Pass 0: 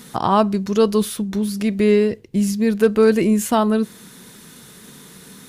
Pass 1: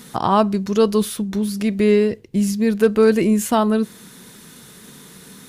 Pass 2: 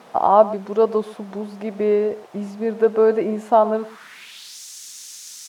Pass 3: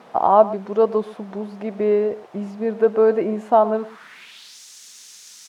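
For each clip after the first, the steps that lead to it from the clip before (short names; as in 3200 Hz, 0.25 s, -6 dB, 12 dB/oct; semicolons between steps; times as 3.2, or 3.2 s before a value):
nothing audible
added noise white -38 dBFS; band-pass sweep 690 Hz -> 6200 Hz, 3.74–4.6; outdoor echo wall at 20 m, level -17 dB; gain +7 dB
high shelf 5100 Hz -9 dB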